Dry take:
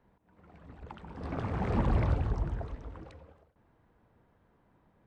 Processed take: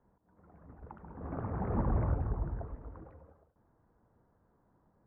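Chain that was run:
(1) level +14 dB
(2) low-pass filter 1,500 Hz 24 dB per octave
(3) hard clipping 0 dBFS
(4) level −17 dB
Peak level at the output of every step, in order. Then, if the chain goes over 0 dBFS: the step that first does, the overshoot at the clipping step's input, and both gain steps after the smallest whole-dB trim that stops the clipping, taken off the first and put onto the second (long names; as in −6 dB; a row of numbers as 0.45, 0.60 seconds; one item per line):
−2.5, −2.5, −2.5, −19.5 dBFS
no step passes full scale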